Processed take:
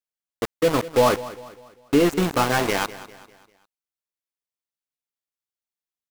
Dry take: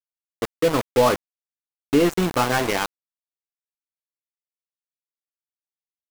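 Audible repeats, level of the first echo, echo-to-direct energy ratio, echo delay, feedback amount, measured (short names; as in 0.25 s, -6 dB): 3, -16.5 dB, -15.5 dB, 0.199 s, 43%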